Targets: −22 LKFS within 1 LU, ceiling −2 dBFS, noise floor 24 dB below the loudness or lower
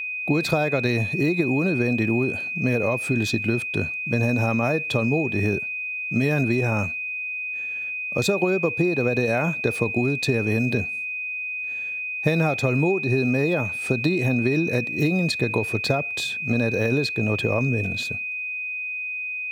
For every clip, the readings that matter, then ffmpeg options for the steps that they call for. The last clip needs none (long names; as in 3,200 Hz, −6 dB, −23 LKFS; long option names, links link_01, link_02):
interfering tone 2,500 Hz; level of the tone −27 dBFS; integrated loudness −23.0 LKFS; sample peak −7.0 dBFS; target loudness −22.0 LKFS
→ -af "bandreject=frequency=2500:width=30"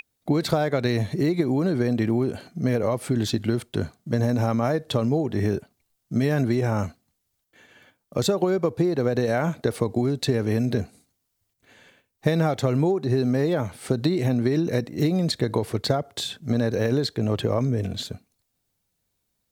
interfering tone none found; integrated loudness −24.5 LKFS; sample peak −7.5 dBFS; target loudness −22.0 LKFS
→ -af "volume=2.5dB"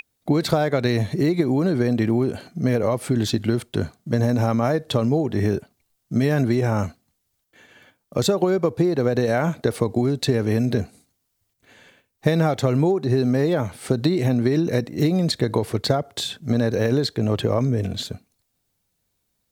integrated loudness −22.0 LKFS; sample peak −5.0 dBFS; background noise floor −74 dBFS